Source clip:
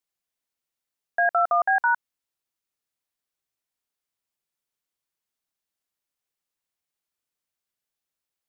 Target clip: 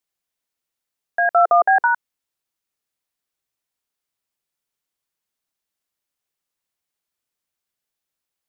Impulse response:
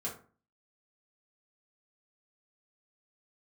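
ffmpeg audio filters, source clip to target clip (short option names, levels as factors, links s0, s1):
-filter_complex "[0:a]asplit=3[s0][s1][s2];[s0]afade=t=out:st=1.34:d=0.02[s3];[s1]equalizer=f=430:w=1:g=11.5,afade=t=in:st=1.34:d=0.02,afade=t=out:st=1.86:d=0.02[s4];[s2]afade=t=in:st=1.86:d=0.02[s5];[s3][s4][s5]amix=inputs=3:normalize=0,volume=1.41"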